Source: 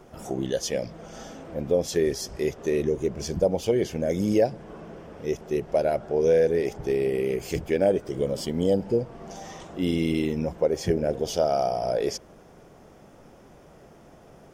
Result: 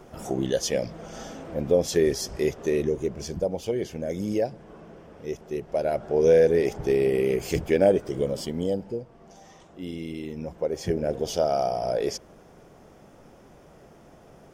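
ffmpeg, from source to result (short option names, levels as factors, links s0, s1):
-af "volume=8.41,afade=t=out:st=2.38:d=1.08:silence=0.473151,afade=t=in:st=5.69:d=0.6:silence=0.446684,afade=t=out:st=7.87:d=1.17:silence=0.237137,afade=t=in:st=10.2:d=0.99:silence=0.334965"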